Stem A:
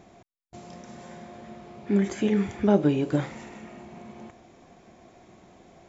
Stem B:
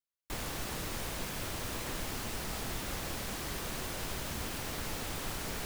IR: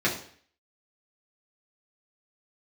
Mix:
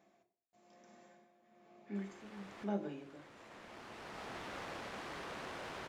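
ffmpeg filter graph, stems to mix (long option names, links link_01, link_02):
-filter_complex "[0:a]tremolo=f=1.1:d=0.73,volume=-16dB,asplit=3[link_01][link_02][link_03];[link_02]volume=-14dB[link_04];[1:a]adynamicsmooth=sensitivity=4:basefreq=2600,adelay=1650,volume=0.5dB[link_05];[link_03]apad=whole_len=322147[link_06];[link_05][link_06]sidechaincompress=threshold=-50dB:ratio=12:attack=6.1:release=1100[link_07];[2:a]atrim=start_sample=2205[link_08];[link_04][link_08]afir=irnorm=-1:irlink=0[link_09];[link_01][link_07][link_09]amix=inputs=3:normalize=0,highpass=frequency=580:poles=1,equalizer=frequency=3700:width_type=o:width=2.3:gain=-3"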